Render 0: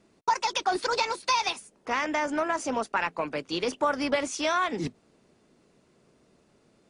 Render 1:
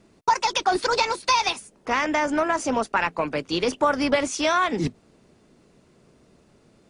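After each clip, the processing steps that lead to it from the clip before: low shelf 140 Hz +7 dB; gain +4.5 dB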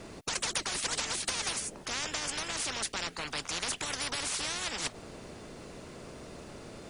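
spectral compressor 10:1; gain -8 dB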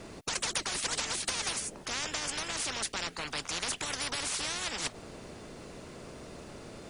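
nothing audible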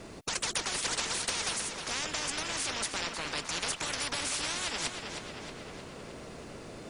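tape echo 0.312 s, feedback 67%, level -6 dB, low-pass 5600 Hz

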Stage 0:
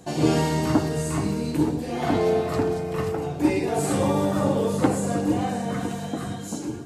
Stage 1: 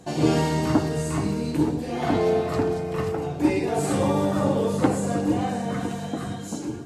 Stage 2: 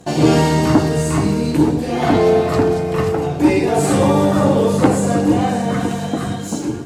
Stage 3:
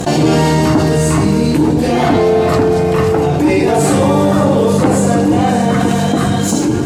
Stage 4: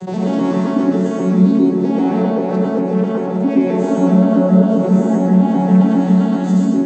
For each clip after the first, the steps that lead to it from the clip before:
high shelf 11000 Hz -7 dB
sample leveller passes 1; gain +5 dB
fast leveller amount 70%; gain -1 dB
arpeggiated vocoder minor triad, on F#3, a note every 0.132 s; plate-style reverb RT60 0.81 s, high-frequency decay 0.55×, pre-delay 95 ms, DRR -2.5 dB; gain -6.5 dB

